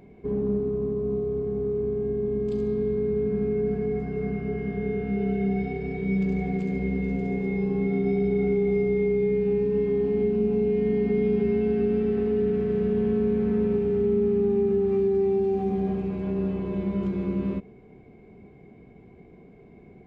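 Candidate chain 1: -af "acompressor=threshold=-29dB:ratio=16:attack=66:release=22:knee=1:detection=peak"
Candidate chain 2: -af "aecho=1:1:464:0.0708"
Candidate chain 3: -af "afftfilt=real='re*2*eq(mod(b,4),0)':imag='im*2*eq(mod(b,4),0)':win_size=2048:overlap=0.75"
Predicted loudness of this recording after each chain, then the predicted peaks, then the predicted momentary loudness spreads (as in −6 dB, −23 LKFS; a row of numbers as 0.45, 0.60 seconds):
−26.5, −25.5, −30.0 LKFS; −14.5, −14.0, −17.5 dBFS; 4, 6, 11 LU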